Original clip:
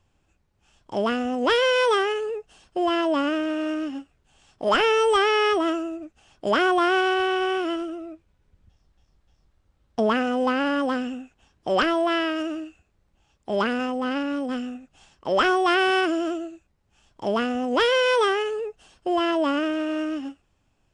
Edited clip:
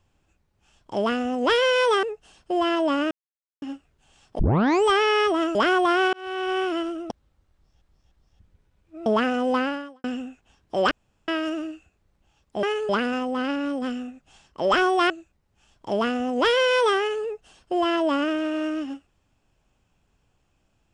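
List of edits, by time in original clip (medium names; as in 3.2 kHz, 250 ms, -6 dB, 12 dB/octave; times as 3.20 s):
2.03–2.29 s: move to 13.56 s
3.37–3.88 s: mute
4.65 s: tape start 0.46 s
5.81–6.48 s: delete
7.06–7.51 s: fade in
8.03–9.99 s: reverse
10.55–10.97 s: fade out quadratic
11.84–12.21 s: room tone
15.77–16.45 s: delete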